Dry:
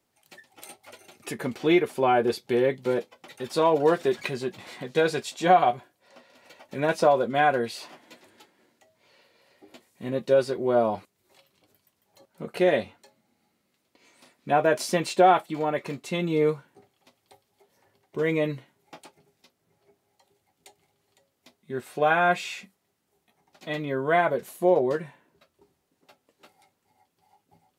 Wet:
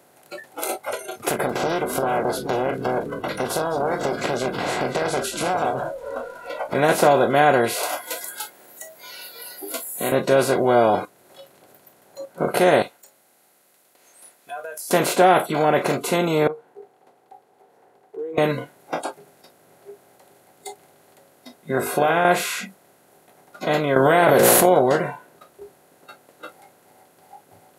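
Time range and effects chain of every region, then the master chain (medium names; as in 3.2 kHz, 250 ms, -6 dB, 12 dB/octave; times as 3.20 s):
1.29–6.75 s: compression 5:1, threshold -37 dBFS + frequency-shifting echo 202 ms, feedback 55%, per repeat -90 Hz, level -15 dB + loudspeaker Doppler distortion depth 0.87 ms
7.83–10.12 s: RIAA curve recording + three bands compressed up and down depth 40%
12.82–14.91 s: differentiator + compression 20:1, threshold -49 dBFS
16.47–18.38 s: compression 2:1, threshold -52 dBFS + two resonant band-passes 590 Hz, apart 0.76 oct
21.77–22.25 s: hum notches 50/100/150/200/250/300/350/400/450/500 Hz + compression 5:1, threshold -23 dBFS
23.96–24.66 s: hum notches 60/120/180/240/300/360/420/480/540 Hz + level flattener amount 100%
whole clip: spectral levelling over time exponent 0.4; spectral noise reduction 20 dB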